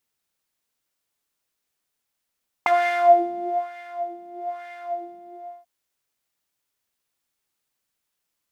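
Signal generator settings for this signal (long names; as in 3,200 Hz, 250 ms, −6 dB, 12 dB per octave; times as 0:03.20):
subtractive patch with filter wobble F5, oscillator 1 triangle, interval 0 semitones, oscillator 2 level −16.5 dB, sub −18 dB, noise −19 dB, filter bandpass, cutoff 290 Hz, Q 3, filter envelope 3 octaves, filter decay 0.06 s, attack 1.7 ms, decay 1.03 s, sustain −19 dB, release 0.53 s, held 2.46 s, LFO 1.1 Hz, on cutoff 1.5 octaves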